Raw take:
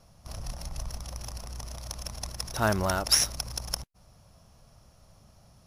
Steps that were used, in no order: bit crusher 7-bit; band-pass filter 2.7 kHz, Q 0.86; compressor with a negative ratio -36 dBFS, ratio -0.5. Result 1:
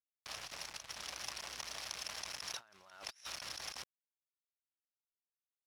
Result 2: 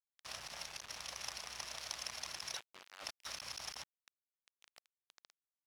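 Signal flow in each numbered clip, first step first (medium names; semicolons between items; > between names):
bit crusher > compressor with a negative ratio > band-pass filter; compressor with a negative ratio > bit crusher > band-pass filter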